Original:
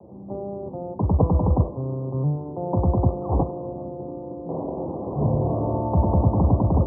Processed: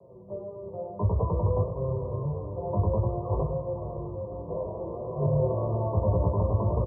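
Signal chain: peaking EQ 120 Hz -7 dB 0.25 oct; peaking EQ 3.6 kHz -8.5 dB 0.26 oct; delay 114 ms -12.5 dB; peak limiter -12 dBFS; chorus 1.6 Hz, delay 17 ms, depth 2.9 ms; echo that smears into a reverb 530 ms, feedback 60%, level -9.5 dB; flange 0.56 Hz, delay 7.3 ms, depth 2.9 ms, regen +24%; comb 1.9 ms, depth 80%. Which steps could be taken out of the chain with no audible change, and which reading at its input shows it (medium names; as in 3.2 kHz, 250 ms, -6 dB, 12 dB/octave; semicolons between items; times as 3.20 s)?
peaking EQ 3.6 kHz: input has nothing above 1.1 kHz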